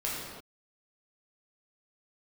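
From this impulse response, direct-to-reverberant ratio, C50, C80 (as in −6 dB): −6.5 dB, −1.0 dB, 1.0 dB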